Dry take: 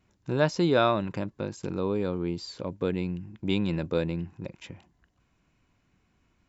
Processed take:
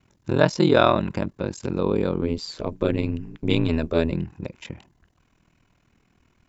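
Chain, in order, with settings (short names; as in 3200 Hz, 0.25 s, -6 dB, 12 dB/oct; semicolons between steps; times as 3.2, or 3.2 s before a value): ring modulator 21 Hz, from 2.22 s 80 Hz, from 4.11 s 20 Hz; gain +8.5 dB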